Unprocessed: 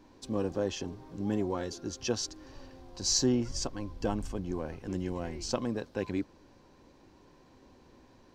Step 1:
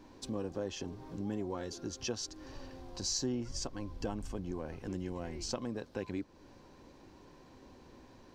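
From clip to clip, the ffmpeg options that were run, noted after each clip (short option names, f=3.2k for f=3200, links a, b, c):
-af "acompressor=threshold=-42dB:ratio=2,volume=2dB"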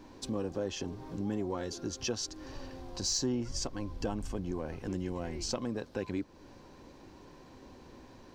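-af "asoftclip=type=tanh:threshold=-22.5dB,volume=3.5dB"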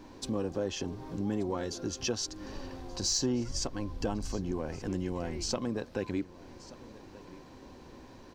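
-af "aecho=1:1:1180:0.112,volume=2dB"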